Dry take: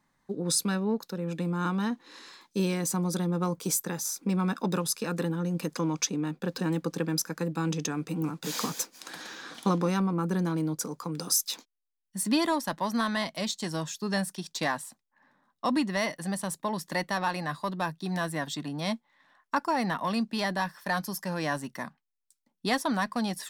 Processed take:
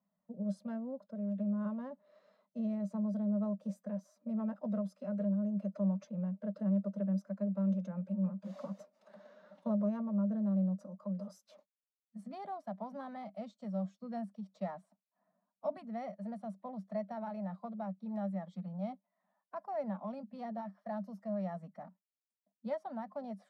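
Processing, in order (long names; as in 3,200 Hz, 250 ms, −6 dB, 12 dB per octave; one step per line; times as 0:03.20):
phase-vocoder pitch shift with formants kept +3 semitones
pair of resonant band-passes 340 Hz, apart 1.6 octaves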